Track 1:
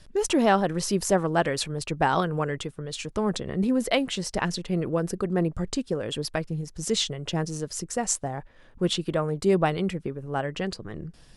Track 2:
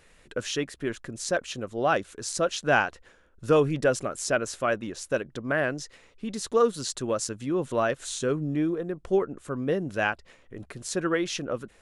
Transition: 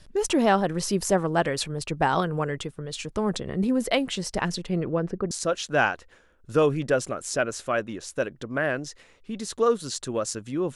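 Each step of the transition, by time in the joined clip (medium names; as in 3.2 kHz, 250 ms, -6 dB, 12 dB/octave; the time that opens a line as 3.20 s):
track 1
4.68–5.31 s: low-pass 8.3 kHz -> 1.3 kHz
5.31 s: go over to track 2 from 2.25 s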